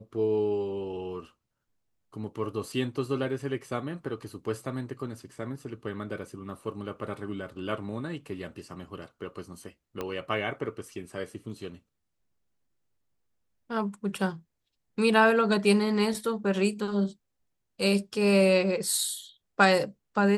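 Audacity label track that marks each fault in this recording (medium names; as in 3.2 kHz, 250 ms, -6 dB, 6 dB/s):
10.010000	10.010000	pop -19 dBFS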